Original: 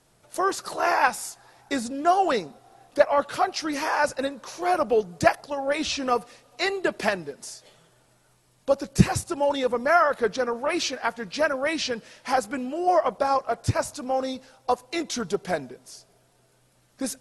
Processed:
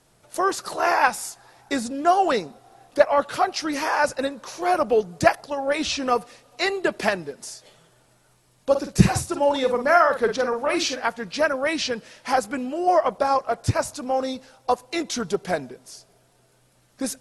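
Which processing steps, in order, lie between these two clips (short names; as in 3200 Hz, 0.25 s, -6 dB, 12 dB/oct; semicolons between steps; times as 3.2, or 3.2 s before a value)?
8.7–11.08 doubler 49 ms -7.5 dB; gain +2 dB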